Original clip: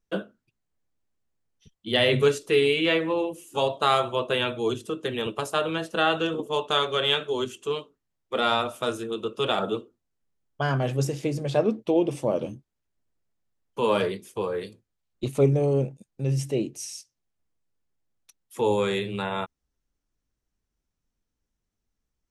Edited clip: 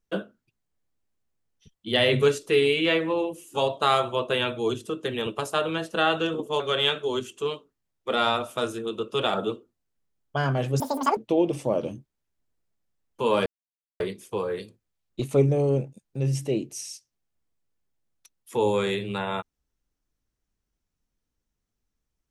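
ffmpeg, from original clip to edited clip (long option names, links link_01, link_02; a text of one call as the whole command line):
ffmpeg -i in.wav -filter_complex "[0:a]asplit=5[link_01][link_02][link_03][link_04][link_05];[link_01]atrim=end=6.602[link_06];[link_02]atrim=start=6.848:end=11.054[link_07];[link_03]atrim=start=11.05:end=11.75,asetpts=PTS-STARTPTS,asetrate=83349,aresample=44100,atrim=end_sample=16333,asetpts=PTS-STARTPTS[link_08];[link_04]atrim=start=11.746:end=14.04,asetpts=PTS-STARTPTS,afade=type=out:start_time=2.29:duration=0.004:curve=hsin,apad=pad_dur=0.54[link_09];[link_05]atrim=start=14.04,asetpts=PTS-STARTPTS,afade=type=in:duration=0.004:curve=hsin[link_10];[link_06][link_07]acrossfade=duration=0.004:curve1=hsin:curve2=hsin[link_11];[link_11][link_08]acrossfade=duration=0.004:curve1=hsin:curve2=hsin[link_12];[link_09][link_10]concat=n=2:v=0:a=1[link_13];[link_12][link_13]acrossfade=duration=0.004:curve1=hsin:curve2=hsin" out.wav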